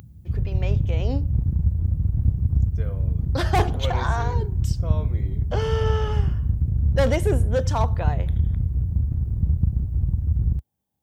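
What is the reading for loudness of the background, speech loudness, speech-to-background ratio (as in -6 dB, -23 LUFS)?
-24.0 LUFS, -28.5 LUFS, -4.5 dB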